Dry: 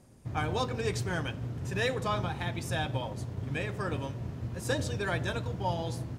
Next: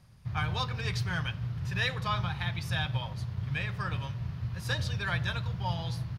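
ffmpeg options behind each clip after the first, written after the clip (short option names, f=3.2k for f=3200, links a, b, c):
-af "firequalizer=gain_entry='entry(160,0);entry(260,-17);entry(1100,-1);entry(4600,2);entry(7600,-13);entry(11000,-5)':delay=0.05:min_phase=1,volume=2.5dB"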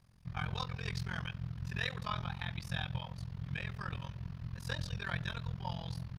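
-af "tremolo=f=43:d=0.974,volume=-3dB"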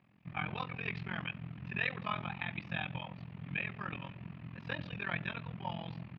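-af "highpass=200,equalizer=f=200:t=q:w=4:g=3,equalizer=f=290:t=q:w=4:g=6,equalizer=f=480:t=q:w=4:g=-4,equalizer=f=1k:t=q:w=4:g=-3,equalizer=f=1.5k:t=q:w=4:g=-5,equalizer=f=2.5k:t=q:w=4:g=6,lowpass=f=2.8k:w=0.5412,lowpass=f=2.8k:w=1.3066,volume=4dB"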